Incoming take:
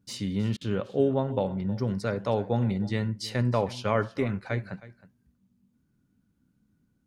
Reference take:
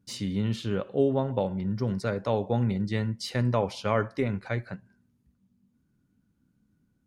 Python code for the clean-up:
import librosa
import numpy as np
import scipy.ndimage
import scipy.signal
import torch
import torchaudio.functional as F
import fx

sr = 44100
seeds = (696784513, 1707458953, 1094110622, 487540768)

y = fx.fix_interpolate(x, sr, at_s=(0.57,), length_ms=40.0)
y = fx.fix_echo_inverse(y, sr, delay_ms=316, level_db=-18.0)